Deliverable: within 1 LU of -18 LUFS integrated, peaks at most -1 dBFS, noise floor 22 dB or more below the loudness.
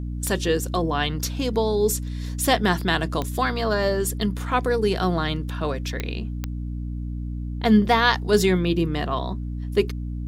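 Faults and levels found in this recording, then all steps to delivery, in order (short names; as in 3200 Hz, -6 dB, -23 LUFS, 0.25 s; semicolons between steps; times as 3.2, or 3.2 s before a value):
clicks 4; hum 60 Hz; harmonics up to 300 Hz; hum level -27 dBFS; loudness -23.5 LUFS; peak -3.5 dBFS; loudness target -18.0 LUFS
-> de-click; notches 60/120/180/240/300 Hz; gain +5.5 dB; limiter -1 dBFS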